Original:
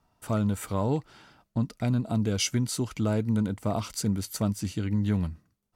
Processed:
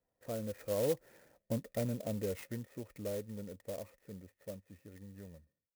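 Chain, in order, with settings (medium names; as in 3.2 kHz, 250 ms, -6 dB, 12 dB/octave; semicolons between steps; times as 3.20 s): Doppler pass-by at 1.51 s, 18 m/s, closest 11 m; cascade formant filter e; sampling jitter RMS 0.067 ms; trim +9 dB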